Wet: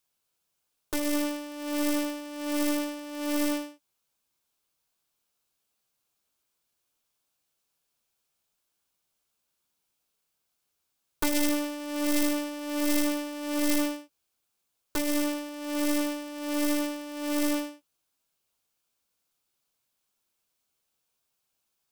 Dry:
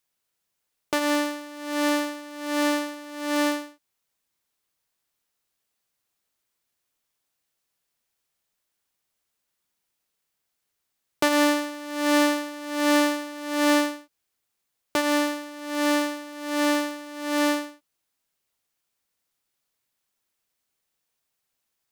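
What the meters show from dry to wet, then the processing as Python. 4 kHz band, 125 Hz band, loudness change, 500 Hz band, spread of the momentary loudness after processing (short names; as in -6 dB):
-6.0 dB, n/a, -4.5 dB, -6.5 dB, 9 LU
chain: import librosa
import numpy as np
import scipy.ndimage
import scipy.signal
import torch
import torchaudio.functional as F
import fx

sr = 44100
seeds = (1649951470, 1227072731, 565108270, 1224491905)

y = fx.self_delay(x, sr, depth_ms=0.92)
y = fx.peak_eq(y, sr, hz=1900.0, db=-8.5, octaves=0.25)
y = fx.doubler(y, sr, ms=14.0, db=-10.5)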